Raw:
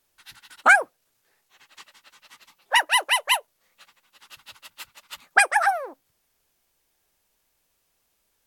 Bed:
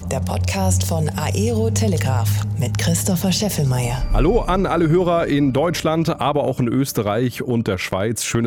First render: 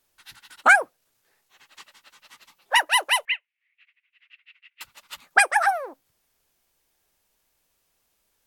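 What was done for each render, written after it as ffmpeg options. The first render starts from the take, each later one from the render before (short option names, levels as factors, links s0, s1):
-filter_complex "[0:a]asettb=1/sr,asplit=3[s0][s1][s2];[s0]atrim=end=3.254[s3];[s1]atrim=start=3.25:end=4.81,asetpts=PTS-STARTPTS,afade=t=in:d=0.004:c=qsin,afade=t=out:st=1.556:d=0.004:c=qsin,asuperpass=centerf=2300:order=4:qfactor=2.7[s4];[s2]atrim=start=4.806[s5];[s3][s4]acrossfade=d=0.004:c1=hsin:c2=qsin[s6];[s6][s5]acrossfade=d=0.004:c1=qsin:c2=hsin"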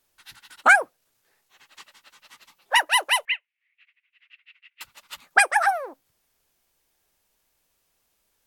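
-af anull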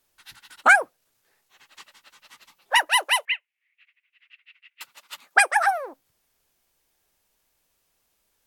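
-filter_complex "[0:a]asettb=1/sr,asplit=3[s0][s1][s2];[s0]atrim=end=2.884[s3];[s1]atrim=start=2.88:end=5.78,asetpts=PTS-STARTPTS,afade=t=in:d=0.004:c=qsin,afade=t=out:st=2.896:d=0.004:c=qsin,highpass=260[s4];[s2]atrim=start=5.776[s5];[s3][s4]acrossfade=d=0.004:c1=hsin:c2=qsin[s6];[s6][s5]acrossfade=d=0.004:c1=qsin:c2=hsin"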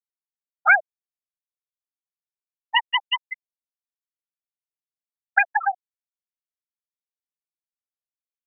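-af "afftfilt=real='re*gte(hypot(re,im),0.631)':imag='im*gte(hypot(re,im),0.631)':win_size=1024:overlap=0.75,bass=f=250:g=-12,treble=f=4000:g=12"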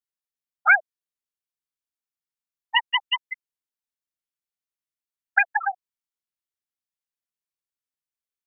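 -af "equalizer=f=610:w=1.5:g=-6"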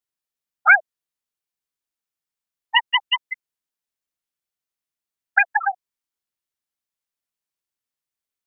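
-af "volume=1.5,alimiter=limit=0.794:level=0:latency=1"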